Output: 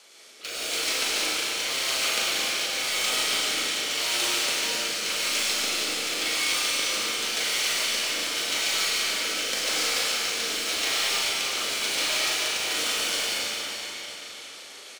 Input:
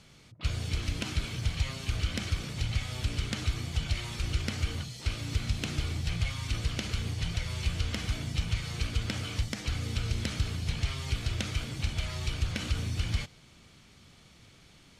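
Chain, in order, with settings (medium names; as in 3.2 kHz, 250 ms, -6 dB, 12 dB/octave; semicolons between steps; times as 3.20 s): high-pass 410 Hz 24 dB/octave; treble shelf 6.5 kHz +10 dB; reverse; compression 4:1, threshold -39 dBFS, peak gain reduction 10 dB; reverse; rotary cabinet horn 0.9 Hz, later 6.3 Hz, at 12.50 s; in parallel at -6 dB: bit crusher 7-bit; on the sum: doubling 39 ms -5.5 dB; algorithmic reverb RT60 4.3 s, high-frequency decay 0.95×, pre-delay 60 ms, DRR -7 dB; trim +7 dB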